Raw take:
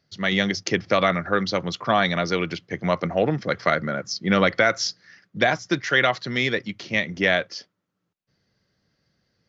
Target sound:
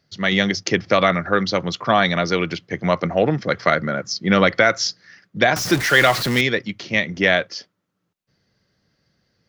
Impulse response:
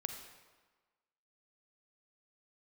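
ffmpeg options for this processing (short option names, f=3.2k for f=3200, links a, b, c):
-filter_complex "[0:a]asettb=1/sr,asplit=3[a][b][c];[a]atrim=end=5.564[d];[b]atrim=start=5.56:end=6.41,asetpts=PTS-STARTPTS,afade=t=in:d=0.004:c=qsin,afade=t=out:st=0.846:d=0.004:c=qsin,aeval=exprs='val(0)+0.5*0.0631*sgn(val(0))':c=same[e];[c]atrim=start=6.406[f];[d][e]acrossfade=d=0.004:c1=hsin:c2=qsin[g];[g][f]acrossfade=d=0.004:c1=qsin:c2=hsin,volume=3.5dB"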